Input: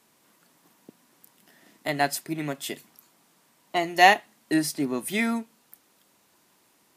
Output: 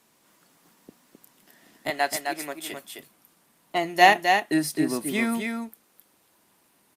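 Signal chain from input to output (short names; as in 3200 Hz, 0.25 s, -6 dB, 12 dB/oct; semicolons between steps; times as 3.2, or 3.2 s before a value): 1.9–2.73 HPF 450 Hz 12 dB/oct; echo 0.261 s -5 dB; Opus 48 kbps 48000 Hz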